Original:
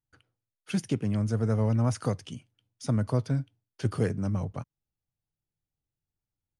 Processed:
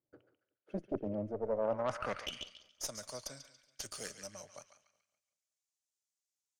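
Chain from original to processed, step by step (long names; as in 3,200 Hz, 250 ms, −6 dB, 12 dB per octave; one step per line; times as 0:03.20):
on a send: feedback echo with a band-pass in the loop 141 ms, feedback 47%, band-pass 2,600 Hz, level −7 dB
on the sum: band-pass filter sweep 370 Hz → 6,700 Hz, 0:01.34–0:02.77
reversed playback
downward compressor 6 to 1, threshold −47 dBFS, peak gain reduction 17.5 dB
reversed playback
harmonic generator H 6 −15 dB, 8 −26 dB, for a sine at −33.5 dBFS
parametric band 590 Hz +13 dB 0.28 octaves
feedback echo with a swinging delay time 186 ms, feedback 37%, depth 79 cents, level −22 dB
level +10.5 dB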